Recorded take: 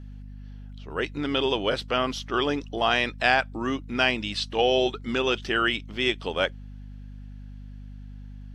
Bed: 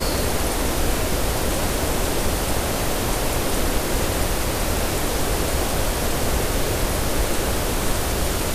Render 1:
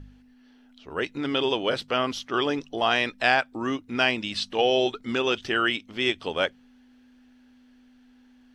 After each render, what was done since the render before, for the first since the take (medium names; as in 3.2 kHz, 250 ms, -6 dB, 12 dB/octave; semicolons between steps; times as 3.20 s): de-hum 50 Hz, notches 4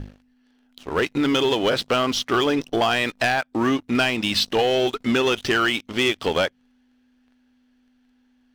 compression 6:1, threshold -26 dBFS, peak gain reduction 10.5 dB; waveshaping leveller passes 3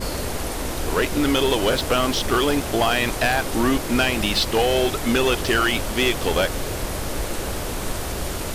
add bed -5 dB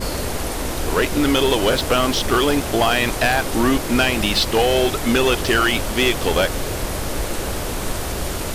trim +2.5 dB